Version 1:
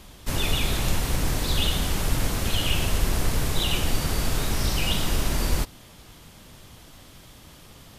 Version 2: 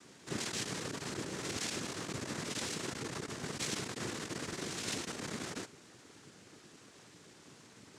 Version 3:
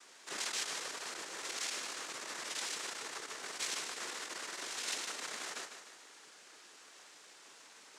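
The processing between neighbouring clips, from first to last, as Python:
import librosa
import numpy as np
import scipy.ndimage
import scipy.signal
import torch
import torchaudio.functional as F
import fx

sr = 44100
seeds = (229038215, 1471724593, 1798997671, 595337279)

y1 = x + 0.31 * np.pad(x, (int(5.9 * sr / 1000.0), 0))[:len(x)]
y1 = 10.0 ** (-21.0 / 20.0) * np.tanh(y1 / 10.0 ** (-21.0 / 20.0))
y1 = fx.noise_vocoder(y1, sr, seeds[0], bands=3)
y1 = y1 * 10.0 ** (-8.0 / 20.0)
y2 = fx.rider(y1, sr, range_db=10, speed_s=2.0)
y2 = scipy.signal.sosfilt(scipy.signal.butter(2, 700.0, 'highpass', fs=sr, output='sos'), y2)
y2 = fx.echo_feedback(y2, sr, ms=151, feedback_pct=52, wet_db=-9)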